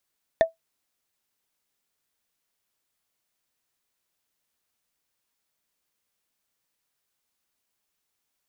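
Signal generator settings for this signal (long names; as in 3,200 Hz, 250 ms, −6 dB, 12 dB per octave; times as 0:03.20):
struck wood, lowest mode 655 Hz, decay 0.14 s, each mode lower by 8.5 dB, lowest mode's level −10 dB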